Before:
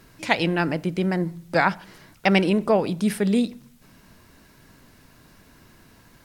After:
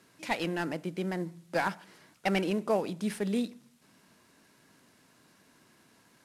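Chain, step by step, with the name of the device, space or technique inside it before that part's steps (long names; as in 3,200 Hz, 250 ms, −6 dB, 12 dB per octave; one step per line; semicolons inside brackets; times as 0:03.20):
early wireless headset (high-pass filter 180 Hz 12 dB per octave; variable-slope delta modulation 64 kbit/s)
level −8 dB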